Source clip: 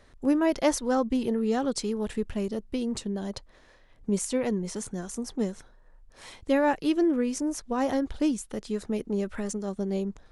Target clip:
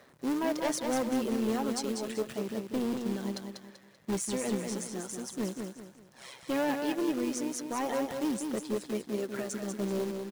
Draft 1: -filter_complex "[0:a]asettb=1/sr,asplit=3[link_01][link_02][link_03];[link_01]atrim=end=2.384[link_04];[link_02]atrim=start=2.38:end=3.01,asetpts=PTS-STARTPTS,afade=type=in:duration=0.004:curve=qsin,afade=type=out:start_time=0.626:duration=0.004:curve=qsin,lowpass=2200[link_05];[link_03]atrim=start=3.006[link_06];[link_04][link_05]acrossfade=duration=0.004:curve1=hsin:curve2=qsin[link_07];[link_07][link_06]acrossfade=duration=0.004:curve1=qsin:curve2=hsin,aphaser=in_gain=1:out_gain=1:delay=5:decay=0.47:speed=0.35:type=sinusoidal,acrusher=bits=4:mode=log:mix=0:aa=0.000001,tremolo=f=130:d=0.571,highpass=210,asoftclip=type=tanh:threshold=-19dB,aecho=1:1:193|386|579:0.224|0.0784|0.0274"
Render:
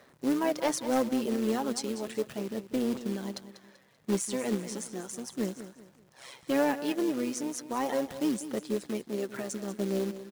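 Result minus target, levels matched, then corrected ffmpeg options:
echo-to-direct −7.5 dB; soft clipping: distortion −7 dB
-filter_complex "[0:a]asettb=1/sr,asplit=3[link_01][link_02][link_03];[link_01]atrim=end=2.384[link_04];[link_02]atrim=start=2.38:end=3.01,asetpts=PTS-STARTPTS,afade=type=in:duration=0.004:curve=qsin,afade=type=out:start_time=0.626:duration=0.004:curve=qsin,lowpass=2200[link_05];[link_03]atrim=start=3.006[link_06];[link_04][link_05]acrossfade=duration=0.004:curve1=hsin:curve2=qsin[link_07];[link_07][link_06]acrossfade=duration=0.004:curve1=qsin:curve2=hsin,aphaser=in_gain=1:out_gain=1:delay=5:decay=0.47:speed=0.35:type=sinusoidal,acrusher=bits=4:mode=log:mix=0:aa=0.000001,tremolo=f=130:d=0.571,highpass=210,asoftclip=type=tanh:threshold=-26dB,aecho=1:1:193|386|579|772:0.531|0.186|0.065|0.0228"

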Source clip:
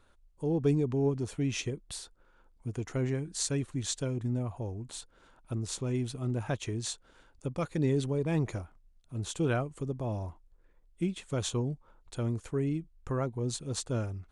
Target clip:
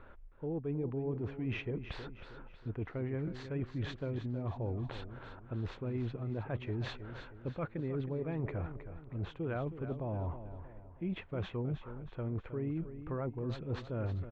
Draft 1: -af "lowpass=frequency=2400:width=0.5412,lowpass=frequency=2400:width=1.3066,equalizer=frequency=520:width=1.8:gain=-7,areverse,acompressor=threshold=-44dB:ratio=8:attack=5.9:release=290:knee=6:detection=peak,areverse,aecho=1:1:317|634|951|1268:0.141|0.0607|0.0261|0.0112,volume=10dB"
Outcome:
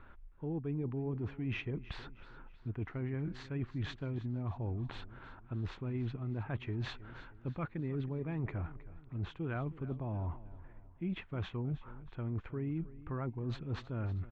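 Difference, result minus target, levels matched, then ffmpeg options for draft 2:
500 Hz band −4.0 dB; echo-to-direct −6 dB
-af "lowpass=frequency=2400:width=0.5412,lowpass=frequency=2400:width=1.3066,equalizer=frequency=520:width=1.8:gain=2,areverse,acompressor=threshold=-44dB:ratio=8:attack=5.9:release=290:knee=6:detection=peak,areverse,aecho=1:1:317|634|951|1268:0.282|0.121|0.0521|0.0224,volume=10dB"

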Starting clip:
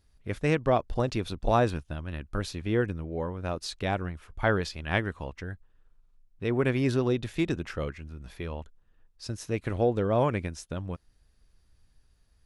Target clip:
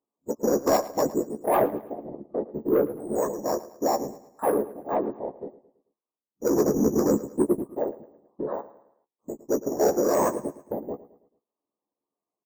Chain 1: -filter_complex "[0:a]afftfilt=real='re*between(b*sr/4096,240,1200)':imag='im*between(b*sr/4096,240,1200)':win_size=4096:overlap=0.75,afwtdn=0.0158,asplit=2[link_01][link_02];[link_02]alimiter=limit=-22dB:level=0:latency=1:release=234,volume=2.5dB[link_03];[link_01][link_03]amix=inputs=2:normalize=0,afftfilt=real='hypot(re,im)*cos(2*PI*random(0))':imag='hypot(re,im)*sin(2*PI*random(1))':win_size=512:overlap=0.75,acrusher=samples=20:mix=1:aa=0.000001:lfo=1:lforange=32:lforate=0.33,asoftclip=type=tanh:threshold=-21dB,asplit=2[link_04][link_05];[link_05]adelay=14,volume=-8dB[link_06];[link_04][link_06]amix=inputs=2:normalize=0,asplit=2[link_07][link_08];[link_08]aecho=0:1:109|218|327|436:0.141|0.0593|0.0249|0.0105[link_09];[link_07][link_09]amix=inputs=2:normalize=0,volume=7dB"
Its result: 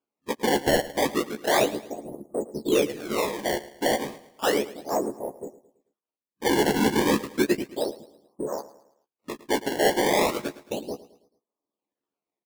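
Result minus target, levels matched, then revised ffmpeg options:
sample-and-hold swept by an LFO: distortion +17 dB
-filter_complex "[0:a]afftfilt=real='re*between(b*sr/4096,240,1200)':imag='im*between(b*sr/4096,240,1200)':win_size=4096:overlap=0.75,afwtdn=0.0158,asplit=2[link_01][link_02];[link_02]alimiter=limit=-22dB:level=0:latency=1:release=234,volume=2.5dB[link_03];[link_01][link_03]amix=inputs=2:normalize=0,afftfilt=real='hypot(re,im)*cos(2*PI*random(0))':imag='hypot(re,im)*sin(2*PI*random(1))':win_size=512:overlap=0.75,acrusher=samples=4:mix=1:aa=0.000001:lfo=1:lforange=6.4:lforate=0.33,asoftclip=type=tanh:threshold=-21dB,asplit=2[link_04][link_05];[link_05]adelay=14,volume=-8dB[link_06];[link_04][link_06]amix=inputs=2:normalize=0,asplit=2[link_07][link_08];[link_08]aecho=0:1:109|218|327|436:0.141|0.0593|0.0249|0.0105[link_09];[link_07][link_09]amix=inputs=2:normalize=0,volume=7dB"

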